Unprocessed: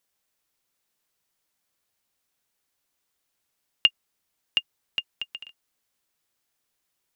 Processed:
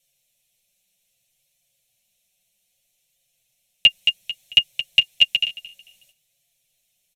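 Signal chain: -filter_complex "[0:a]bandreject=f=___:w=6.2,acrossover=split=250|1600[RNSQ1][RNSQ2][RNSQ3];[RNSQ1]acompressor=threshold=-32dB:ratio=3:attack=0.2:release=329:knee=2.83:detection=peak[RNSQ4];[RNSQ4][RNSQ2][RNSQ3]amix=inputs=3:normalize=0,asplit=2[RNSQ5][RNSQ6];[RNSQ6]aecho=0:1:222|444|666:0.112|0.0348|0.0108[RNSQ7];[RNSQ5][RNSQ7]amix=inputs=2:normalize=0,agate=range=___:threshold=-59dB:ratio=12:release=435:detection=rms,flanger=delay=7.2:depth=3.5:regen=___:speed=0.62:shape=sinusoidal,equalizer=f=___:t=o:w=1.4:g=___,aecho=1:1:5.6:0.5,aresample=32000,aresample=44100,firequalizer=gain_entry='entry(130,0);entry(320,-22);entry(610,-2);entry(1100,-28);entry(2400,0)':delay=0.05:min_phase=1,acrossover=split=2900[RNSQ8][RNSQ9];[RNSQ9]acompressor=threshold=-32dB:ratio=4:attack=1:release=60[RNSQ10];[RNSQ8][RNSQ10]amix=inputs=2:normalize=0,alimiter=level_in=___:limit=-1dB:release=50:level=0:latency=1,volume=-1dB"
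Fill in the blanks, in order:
4800, -10dB, -2, 290, 4, 23dB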